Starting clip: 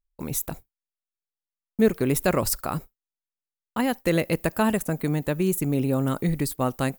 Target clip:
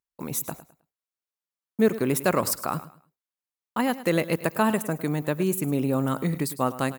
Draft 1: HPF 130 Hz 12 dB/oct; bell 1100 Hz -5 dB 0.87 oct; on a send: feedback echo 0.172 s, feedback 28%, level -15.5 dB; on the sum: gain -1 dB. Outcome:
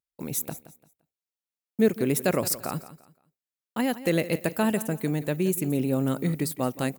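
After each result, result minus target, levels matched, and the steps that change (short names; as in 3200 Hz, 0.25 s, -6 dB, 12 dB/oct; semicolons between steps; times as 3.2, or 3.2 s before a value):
echo 67 ms late; 1000 Hz band -5.0 dB
change: feedback echo 0.105 s, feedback 28%, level -15.5 dB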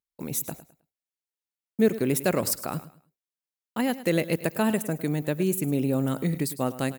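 1000 Hz band -5.0 dB
change: bell 1100 Hz +4 dB 0.87 oct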